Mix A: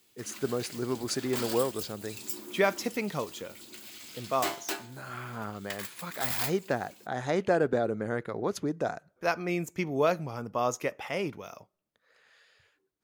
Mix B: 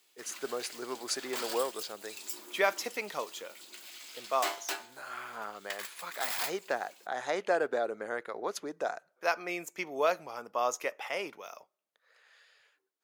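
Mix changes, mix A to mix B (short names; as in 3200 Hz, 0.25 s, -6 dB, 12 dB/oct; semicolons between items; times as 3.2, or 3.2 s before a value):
background: add high shelf 11000 Hz -5.5 dB; master: add HPF 540 Hz 12 dB/oct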